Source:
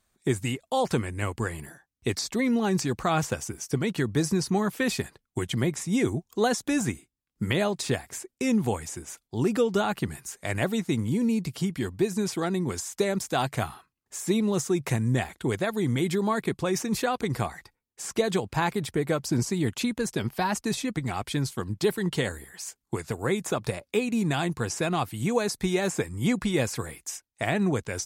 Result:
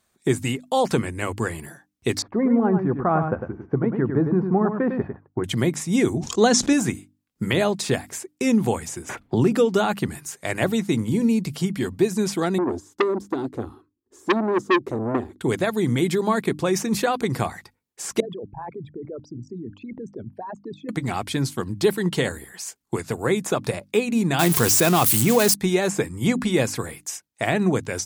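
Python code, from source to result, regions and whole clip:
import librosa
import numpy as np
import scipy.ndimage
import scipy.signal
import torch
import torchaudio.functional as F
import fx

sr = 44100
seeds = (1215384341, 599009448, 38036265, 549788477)

y = fx.chain(x, sr, fx.lowpass(hz=1400.0, slope=24),
    fx.echo_single(ms=102, db=-7.0), at=(2.22, 5.44))
y = fx.chain(y, sr, fx.lowpass_res(hz=6500.0, q=1.6),
    fx.dynamic_eq(hz=240.0, q=1.2, threshold_db=-37.0, ratio=4.0, max_db=5),
    fx.sustainer(db_per_s=56.0), at=(6.17, 6.73))
y = fx.chain(y, sr, fx.bass_treble(bass_db=4, treble_db=-7),
    fx.band_squash(depth_pct=70), at=(9.09, 9.52))
y = fx.chain(y, sr, fx.curve_eq(hz=(100.0, 160.0, 240.0, 360.0, 670.0, 1100.0, 2400.0, 3500.0, 10000.0), db=(0, -14, 4, 9, -14, -10, -22, -16, -22)),
    fx.transformer_sat(knee_hz=1700.0), at=(12.58, 15.41))
y = fx.chain(y, sr, fx.envelope_sharpen(power=3.0),
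    fx.lowpass(hz=1800.0, slope=12),
    fx.level_steps(step_db=19), at=(18.2, 20.89))
y = fx.chain(y, sr, fx.crossing_spikes(level_db=-21.5),
    fx.env_flatten(amount_pct=70), at=(24.39, 25.54))
y = fx.highpass(y, sr, hz=170.0, slope=6)
y = fx.low_shelf(y, sr, hz=380.0, db=4.5)
y = fx.hum_notches(y, sr, base_hz=50, count=6)
y = y * 10.0 ** (4.0 / 20.0)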